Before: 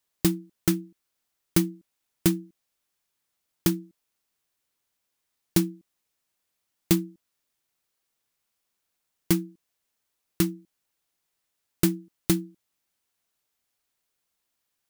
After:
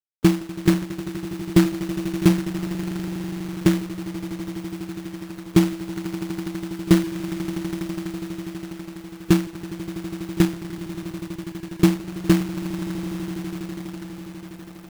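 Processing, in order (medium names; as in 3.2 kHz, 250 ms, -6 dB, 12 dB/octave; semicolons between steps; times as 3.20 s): spectral gate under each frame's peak -15 dB strong; echo with a slow build-up 82 ms, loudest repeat 8, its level -17 dB; companded quantiser 4-bit; trim +7 dB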